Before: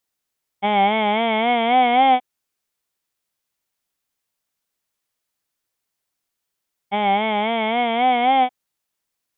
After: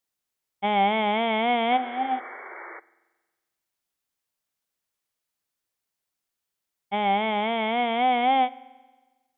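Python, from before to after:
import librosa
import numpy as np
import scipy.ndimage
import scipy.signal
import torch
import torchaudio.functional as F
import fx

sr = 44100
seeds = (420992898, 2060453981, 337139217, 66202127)

y = fx.comb_fb(x, sr, f0_hz=260.0, decay_s=0.39, harmonics='odd', damping=0.0, mix_pct=80, at=(1.76, 2.18), fade=0.02)
y = fx.spec_paint(y, sr, seeds[0], shape='noise', start_s=1.71, length_s=1.09, low_hz=330.0, high_hz=2300.0, level_db=-36.0)
y = fx.rev_spring(y, sr, rt60_s=1.3, pass_ms=(45,), chirp_ms=50, drr_db=19.5)
y = F.gain(torch.from_numpy(y), -4.5).numpy()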